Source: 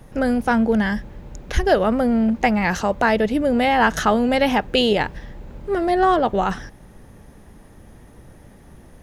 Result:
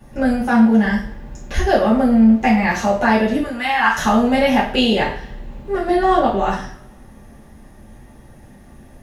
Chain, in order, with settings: 0.44–0.85 s: high-pass 100 Hz; 3.42–3.98 s: resonant low shelf 780 Hz -12 dB, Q 1.5; two-slope reverb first 0.46 s, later 1.6 s, from -24 dB, DRR -8.5 dB; trim -7 dB

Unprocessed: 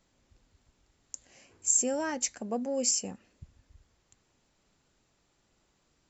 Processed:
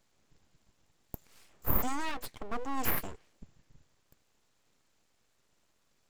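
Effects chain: 2.06–2.56 s: resonant high shelf 3.7 kHz -9 dB, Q 1.5; full-wave rectifier

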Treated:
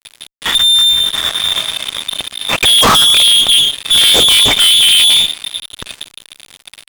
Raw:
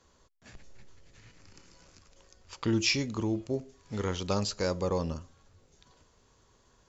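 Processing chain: frequency inversion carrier 3.6 kHz; tape echo 101 ms, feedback 66%, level -22.5 dB, low-pass 1.8 kHz; fuzz box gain 49 dB, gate -58 dBFS; trim +6 dB

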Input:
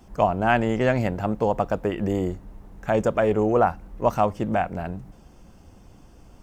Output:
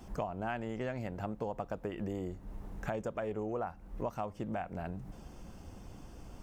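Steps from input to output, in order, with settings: compression 5:1, threshold -36 dBFS, peak gain reduction 19 dB

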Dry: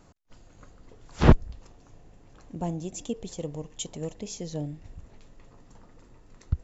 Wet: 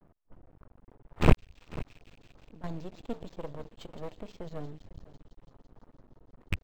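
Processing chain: rattle on loud lows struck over -25 dBFS, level -16 dBFS; level-controlled noise filter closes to 850 Hz, open at -24.5 dBFS; feedback echo behind a high-pass 166 ms, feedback 80%, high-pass 4 kHz, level -11 dB; 1.35–2.64 s: compression 6:1, threshold -45 dBFS, peak gain reduction 15.5 dB; delay 494 ms -18.5 dB; half-wave rectifier; decimation joined by straight lines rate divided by 4×

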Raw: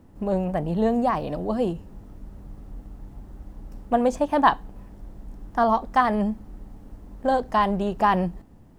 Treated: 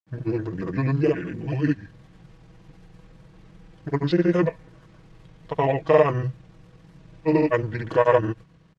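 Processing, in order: vibrato 14 Hz 5.8 cents; comb 3.7 ms, depth 66%; granulator, grains 20 per s, pitch spread up and down by 0 st; frequency weighting D; pitch shift -9 st

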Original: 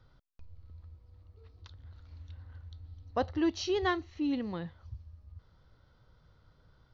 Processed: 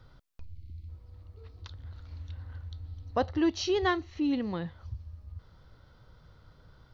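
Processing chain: time-frequency box 0.44–0.89 s, 370–2000 Hz -25 dB; in parallel at -2 dB: compression, threshold -43 dBFS, peak gain reduction 17 dB; on the sum: trim +1.5 dB

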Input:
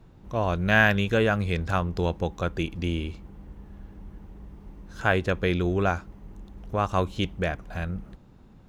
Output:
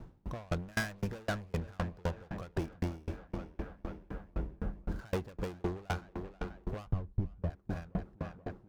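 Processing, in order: median filter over 15 samples; hard clipper -27.5 dBFS, distortion -6 dB; 6.87–7.50 s: tilt EQ -4.5 dB/octave; tape echo 483 ms, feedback 78%, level -11 dB, low-pass 3.8 kHz; compression 8:1, threshold -34 dBFS, peak gain reduction 20 dB; 4.33–5.00 s: bass shelf 330 Hz +7.5 dB; sawtooth tremolo in dB decaying 3.9 Hz, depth 33 dB; trim +7.5 dB

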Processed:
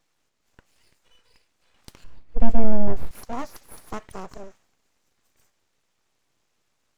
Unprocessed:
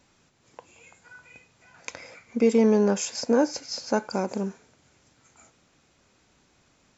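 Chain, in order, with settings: full-wave rectifier; 2.04–3.11 s: tilt EQ -4 dB/octave; trim -7.5 dB

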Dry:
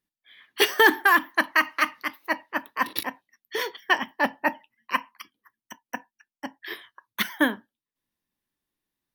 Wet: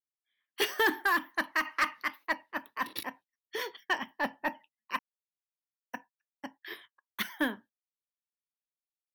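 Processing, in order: gate -45 dBFS, range -22 dB; 1.65–2.32 s: peaking EQ 1.5 kHz +6 dB 2.6 oct; saturation -12 dBFS, distortion -14 dB; 4.99–5.85 s: mute; trim -7 dB

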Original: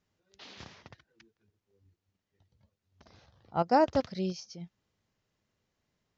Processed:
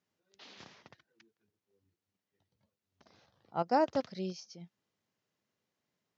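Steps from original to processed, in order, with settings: high-pass 160 Hz 12 dB/octave; trim -4 dB

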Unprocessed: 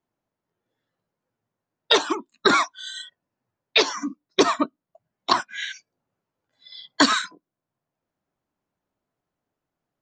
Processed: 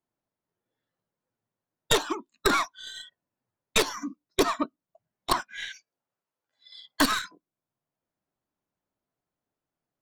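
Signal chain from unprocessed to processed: tracing distortion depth 0.11 ms; 5.68–7.01 s: bass shelf 360 Hz -11.5 dB; trim -5.5 dB

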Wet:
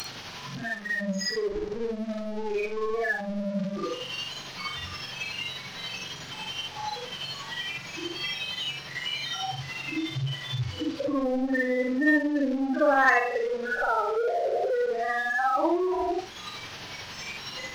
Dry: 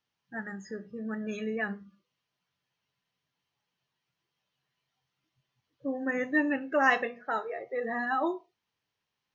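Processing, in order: one-bit delta coder 32 kbps, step -24 dBFS; spectral noise reduction 18 dB; in parallel at +1.5 dB: compression, threshold -42 dBFS, peak gain reduction 21.5 dB; on the sum: granular stretch 1.9×, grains 183 ms; waveshaping leveller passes 1

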